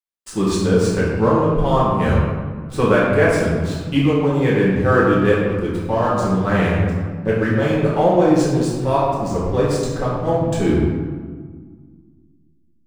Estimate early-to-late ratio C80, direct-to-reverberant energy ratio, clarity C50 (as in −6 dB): 1.5 dB, −8.0 dB, −1.0 dB